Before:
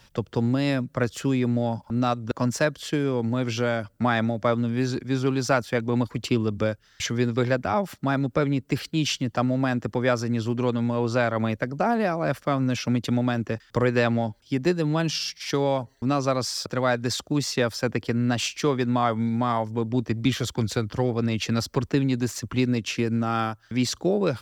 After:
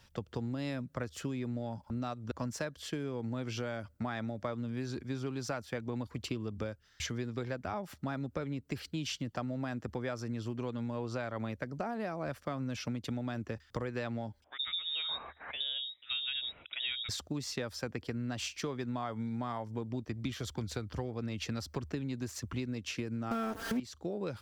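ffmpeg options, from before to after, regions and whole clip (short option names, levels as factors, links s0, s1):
-filter_complex "[0:a]asettb=1/sr,asplit=3[s0][s1][s2];[s0]atrim=end=14.444[s3];[s1]atrim=start=14.44:end=17.09,asetpts=PTS-STARTPTS,afade=t=in:d=0.004:c=qsin,afade=t=out:st=2.646:d=0.004:c=qsin,acrossover=split=560[s4][s5];[s4]adelay=70[s6];[s6][s5]amix=inputs=2:normalize=0,atrim=end_sample=116865,lowpass=f=3300:t=q:w=0.5098,lowpass=f=3300:t=q:w=0.6013,lowpass=f=3300:t=q:w=0.9,lowpass=f=3300:t=q:w=2.563,afreqshift=-3900[s7];[s2]atrim=start=17.086[s8];[s3][s7]acrossfade=d=0.004:c1=hsin:c2=qsin[s9];[s9][s8]acrossfade=d=0.004:c1=qsin:c2=hsin,asettb=1/sr,asplit=3[s10][s11][s12];[s10]atrim=end=23.314[s13];[s11]atrim=start=23.31:end=23.8,asetpts=PTS-STARTPTS,afade=t=in:d=0.004:c=qsin,afade=t=out:st=0.486:d=0.004:c=qsin,aeval=exprs='val(0)+0.5*0.0398*sgn(val(0))':c=same,equalizer=f=390:t=o:w=2.4:g=12.5,aecho=1:1:4.4:0.95,atrim=end_sample=21609[s14];[s12]atrim=start=23.796[s15];[s13][s14]acrossfade=d=0.004:c1=hsin:c2=qsin[s16];[s16][s15]acrossfade=d=0.004:c1=qsin:c2=hsin,equalizer=f=75:t=o:w=0.28:g=13,acompressor=threshold=0.0562:ratio=6,volume=0.398"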